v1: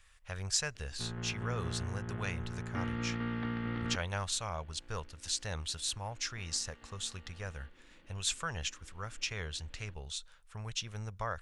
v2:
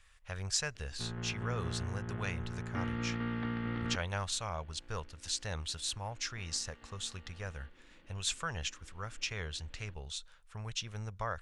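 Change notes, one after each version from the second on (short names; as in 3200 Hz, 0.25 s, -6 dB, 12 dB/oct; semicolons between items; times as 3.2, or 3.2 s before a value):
master: add high shelf 9000 Hz -5 dB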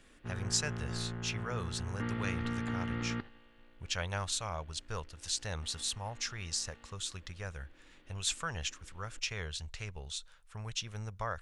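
background: entry -0.75 s; master: add high shelf 9000 Hz +5 dB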